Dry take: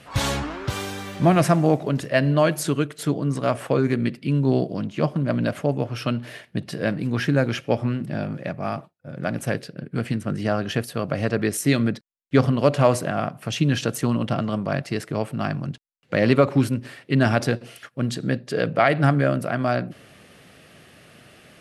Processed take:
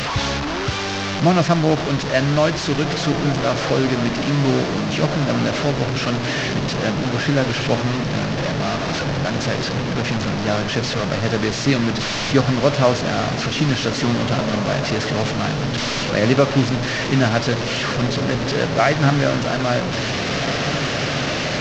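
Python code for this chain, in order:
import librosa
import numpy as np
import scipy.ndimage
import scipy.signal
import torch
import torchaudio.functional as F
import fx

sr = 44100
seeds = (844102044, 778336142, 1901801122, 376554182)

y = fx.delta_mod(x, sr, bps=32000, step_db=-19.0)
y = fx.echo_diffused(y, sr, ms=1832, feedback_pct=59, wet_db=-9.0)
y = y * librosa.db_to_amplitude(1.5)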